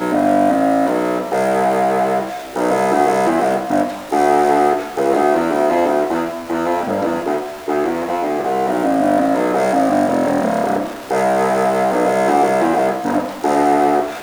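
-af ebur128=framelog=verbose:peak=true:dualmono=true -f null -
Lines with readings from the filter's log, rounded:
Integrated loudness:
  I:         -13.6 LUFS
  Threshold: -23.6 LUFS
Loudness range:
  LRA:         2.6 LU
  Threshold: -33.7 LUFS
  LRA low:   -15.4 LUFS
  LRA high:  -12.8 LUFS
True peak:
  Peak:       -2.3 dBFS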